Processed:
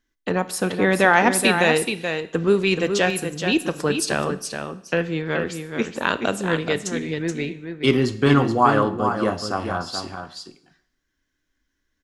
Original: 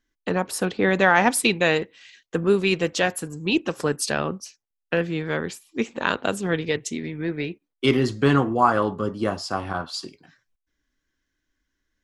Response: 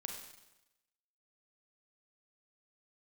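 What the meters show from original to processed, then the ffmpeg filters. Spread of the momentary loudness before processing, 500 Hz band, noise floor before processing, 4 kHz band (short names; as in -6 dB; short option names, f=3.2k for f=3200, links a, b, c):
12 LU, +2.0 dB, -82 dBFS, +2.0 dB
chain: -filter_complex "[0:a]aecho=1:1:427:0.447,asplit=2[a][b];[1:a]atrim=start_sample=2205,asetrate=57330,aresample=44100[c];[b][c]afir=irnorm=-1:irlink=0,volume=-4.5dB[d];[a][d]amix=inputs=2:normalize=0,volume=-1dB"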